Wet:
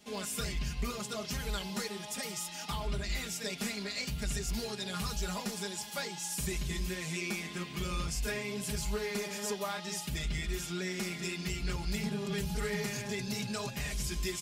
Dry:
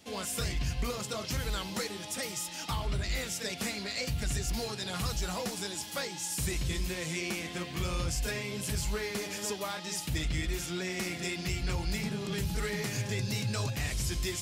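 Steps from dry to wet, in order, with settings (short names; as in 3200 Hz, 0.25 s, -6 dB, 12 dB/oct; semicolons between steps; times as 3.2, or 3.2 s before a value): comb 4.9 ms, depth 85%; gain -4.5 dB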